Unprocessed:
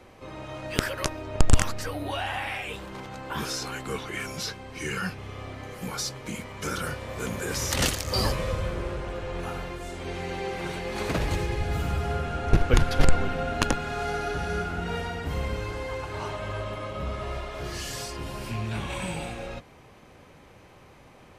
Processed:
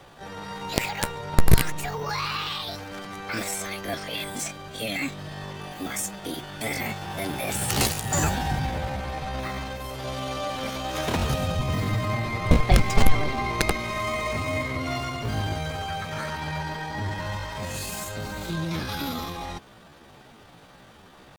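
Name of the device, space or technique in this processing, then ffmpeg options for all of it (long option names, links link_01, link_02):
chipmunk voice: -af "asetrate=66075,aresample=44100,atempo=0.66742,volume=2dB"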